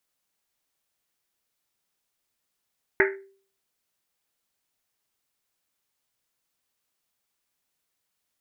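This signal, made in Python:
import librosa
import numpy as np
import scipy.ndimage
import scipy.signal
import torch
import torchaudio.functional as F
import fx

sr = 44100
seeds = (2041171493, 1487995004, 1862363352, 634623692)

y = fx.risset_drum(sr, seeds[0], length_s=1.1, hz=390.0, decay_s=0.48, noise_hz=1800.0, noise_width_hz=640.0, noise_pct=50)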